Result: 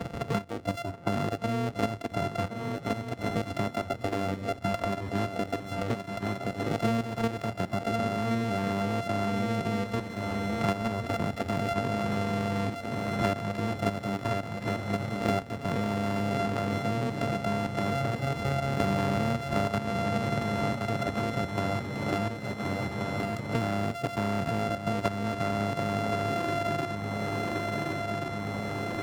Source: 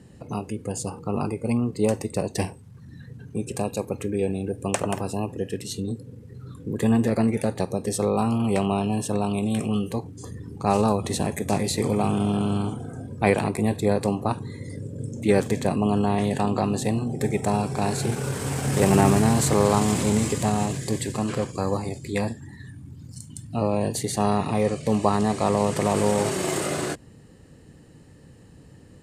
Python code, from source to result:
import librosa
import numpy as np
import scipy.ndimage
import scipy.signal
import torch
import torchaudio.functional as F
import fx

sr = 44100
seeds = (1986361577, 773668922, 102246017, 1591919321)

p1 = np.r_[np.sort(x[:len(x) // 64 * 64].reshape(-1, 64), axis=1).ravel(), x[len(x) // 64 * 64:]]
p2 = fx.noise_reduce_blind(p1, sr, reduce_db=11)
p3 = fx.lowpass(p2, sr, hz=1900.0, slope=6)
p4 = fx.level_steps(p3, sr, step_db=10)
p5 = p4 + fx.echo_swing(p4, sr, ms=1430, ratio=3, feedback_pct=35, wet_db=-11, dry=0)
y = fx.band_squash(p5, sr, depth_pct=100)